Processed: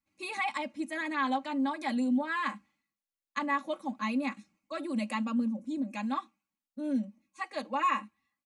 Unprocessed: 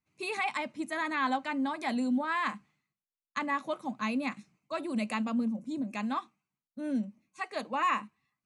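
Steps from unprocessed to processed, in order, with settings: comb 3.6 ms, depth 81%; gain -3.5 dB

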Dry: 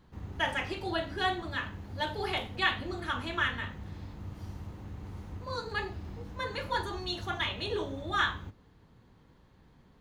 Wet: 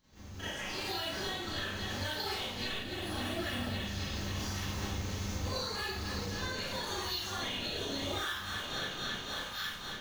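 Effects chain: pre-emphasis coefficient 0.9; spectral gain 2.79–3.81, 860–8000 Hz -19 dB; resonant high shelf 7500 Hz -6.5 dB, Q 3; on a send: thinning echo 0.274 s, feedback 78%, high-pass 300 Hz, level -18 dB; on the sum: compressor 6:1, threshold -56 dBFS, peak gain reduction 21.5 dB; in parallel at -4 dB: decimation with a swept rate 23×, swing 160% 0.81 Hz; on the sum: AGC gain up to 15 dB; limiter -36 dBFS, peak gain reduction 11 dB; Schroeder reverb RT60 0.56 s, combs from 29 ms, DRR -9 dB

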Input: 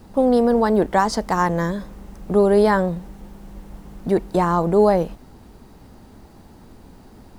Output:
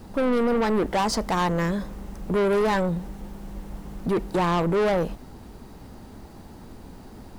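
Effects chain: soft clip -21 dBFS, distortion -6 dB; gain +2 dB

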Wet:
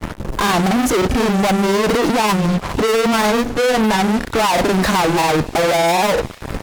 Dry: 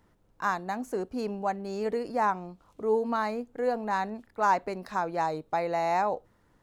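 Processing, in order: low shelf 340 Hz +7 dB; in parallel at -2.5 dB: compressor, threshold -48 dBFS, peak gain reduction 26.5 dB; on the sum: fuzz box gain 55 dB, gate -54 dBFS; grains, spray 30 ms, pitch spread up and down by 0 st; on a send: thin delay 0.228 s, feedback 58%, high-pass 2200 Hz, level -20 dB

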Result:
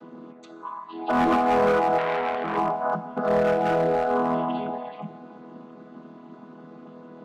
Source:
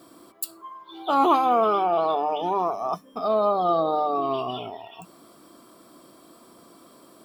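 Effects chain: chord vocoder major triad, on E3; LPF 2700 Hz 12 dB/oct; in parallel at +2 dB: compressor 16:1, threshold -34 dBFS, peak gain reduction 19.5 dB; on the sum: hard clip -17.5 dBFS, distortion -13 dB; 3.4–4.1 bell 1100 Hz -10.5 dB 0.34 oct; on a send at -10.5 dB: reverb RT60 2.0 s, pre-delay 3 ms; 1.98–2.57 on the sum: core saturation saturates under 1300 Hz

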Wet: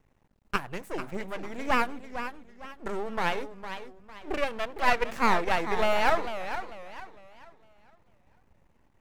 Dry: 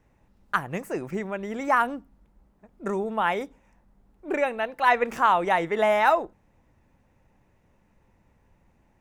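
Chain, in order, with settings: half-wave rectifier; warbling echo 0.451 s, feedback 35%, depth 201 cents, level -10 dB

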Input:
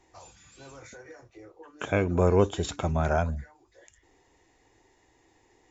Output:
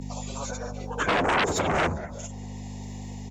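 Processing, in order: one diode to ground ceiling -9 dBFS; low shelf 66 Hz -4.5 dB; AGC gain up to 5 dB; envelope phaser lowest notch 240 Hz, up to 3200 Hz, full sweep at -21 dBFS; grains 0.1 s, pitch spread up and down by 0 st; feedback echo 0.337 s, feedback 27%, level -23 dB; hum 50 Hz, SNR 15 dB; plain phase-vocoder stretch 0.58×; sine folder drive 14 dB, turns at -13.5 dBFS; low shelf 220 Hz -10 dB; de-hum 59.88 Hz, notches 18; three-band squash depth 40%; gain -3.5 dB

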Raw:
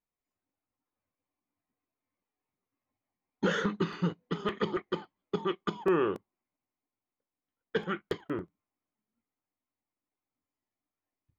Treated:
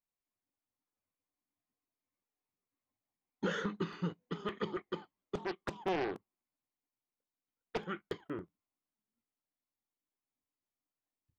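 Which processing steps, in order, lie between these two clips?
5.35–7.8 Doppler distortion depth 1 ms; gain -6.5 dB

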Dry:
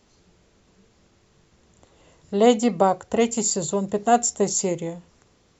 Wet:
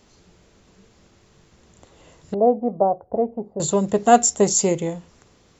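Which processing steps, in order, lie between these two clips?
2.34–3.6 ladder low-pass 810 Hz, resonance 50%; gain +4.5 dB

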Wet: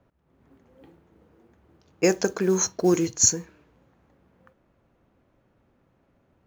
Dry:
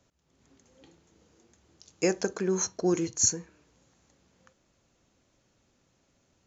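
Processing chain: low-pass opened by the level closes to 1600 Hz, open at -23.5 dBFS; modulation noise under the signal 30 dB; gain +5.5 dB

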